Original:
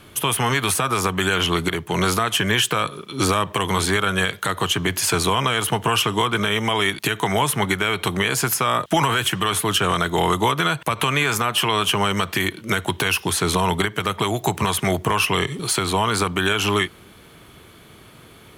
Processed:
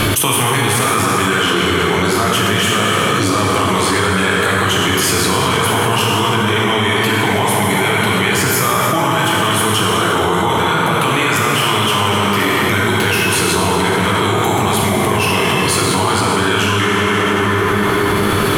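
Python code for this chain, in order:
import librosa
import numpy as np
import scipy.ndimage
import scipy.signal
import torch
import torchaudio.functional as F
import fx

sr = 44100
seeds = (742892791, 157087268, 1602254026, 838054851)

y = fx.rev_plate(x, sr, seeds[0], rt60_s=3.8, hf_ratio=0.6, predelay_ms=0, drr_db=-5.5)
y = fx.env_flatten(y, sr, amount_pct=100)
y = F.gain(torch.from_numpy(y), -5.0).numpy()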